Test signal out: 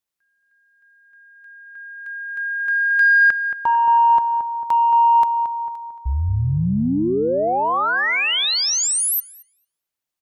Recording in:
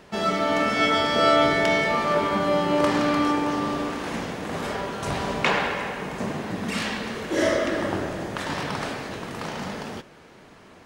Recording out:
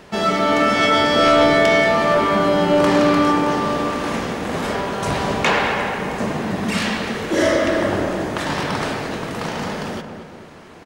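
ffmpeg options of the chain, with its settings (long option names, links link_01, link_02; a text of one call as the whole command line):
ffmpeg -i in.wav -filter_complex "[0:a]aeval=exprs='0.562*sin(PI/2*2*val(0)/0.562)':channel_layout=same,asplit=2[link_01][link_02];[link_02]adelay=224,lowpass=frequency=1600:poles=1,volume=-7dB,asplit=2[link_03][link_04];[link_04]adelay=224,lowpass=frequency=1600:poles=1,volume=0.51,asplit=2[link_05][link_06];[link_06]adelay=224,lowpass=frequency=1600:poles=1,volume=0.51,asplit=2[link_07][link_08];[link_08]adelay=224,lowpass=frequency=1600:poles=1,volume=0.51,asplit=2[link_09][link_10];[link_10]adelay=224,lowpass=frequency=1600:poles=1,volume=0.51,asplit=2[link_11][link_12];[link_12]adelay=224,lowpass=frequency=1600:poles=1,volume=0.51[link_13];[link_03][link_05][link_07][link_09][link_11][link_13]amix=inputs=6:normalize=0[link_14];[link_01][link_14]amix=inputs=2:normalize=0,volume=-4dB" out.wav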